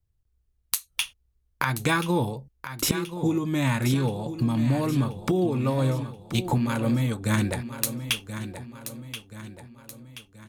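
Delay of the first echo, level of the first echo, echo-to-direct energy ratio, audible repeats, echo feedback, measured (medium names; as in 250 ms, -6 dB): 1029 ms, -11.0 dB, -10.0 dB, 4, 47%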